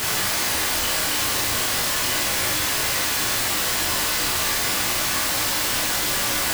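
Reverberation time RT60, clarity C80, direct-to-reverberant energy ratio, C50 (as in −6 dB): 0.55 s, 9.0 dB, −4.0 dB, 5.0 dB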